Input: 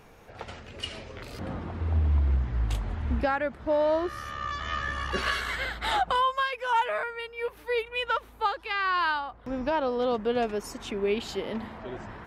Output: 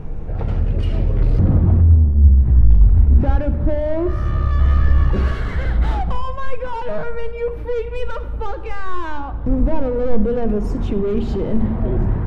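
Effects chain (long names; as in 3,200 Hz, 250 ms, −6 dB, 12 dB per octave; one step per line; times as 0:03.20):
mains-hum notches 60/120/180/240/300 Hz
in parallel at −3 dB: downward compressor, threshold −34 dBFS, peak gain reduction 12.5 dB
on the sum: soft clipping −28.5 dBFS, distortion −8 dB
spectral tilt −4.5 dB per octave
brickwall limiter −14 dBFS, peak gain reduction 6.5 dB
low-shelf EQ 420 Hz +7 dB
convolution reverb RT60 1.4 s, pre-delay 6 ms, DRR 9.5 dB
level +1.5 dB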